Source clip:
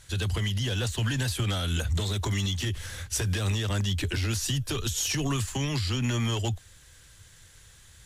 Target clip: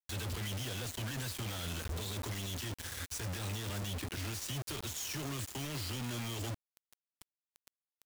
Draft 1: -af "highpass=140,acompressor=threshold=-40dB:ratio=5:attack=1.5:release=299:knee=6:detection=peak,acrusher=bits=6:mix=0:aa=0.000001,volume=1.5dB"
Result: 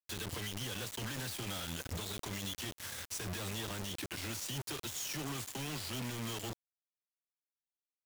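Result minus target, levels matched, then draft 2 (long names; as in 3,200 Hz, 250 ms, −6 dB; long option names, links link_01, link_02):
125 Hz band −3.5 dB
-af "highpass=38,acompressor=threshold=-40dB:ratio=5:attack=1.5:release=299:knee=6:detection=peak,acrusher=bits=6:mix=0:aa=0.000001,volume=1.5dB"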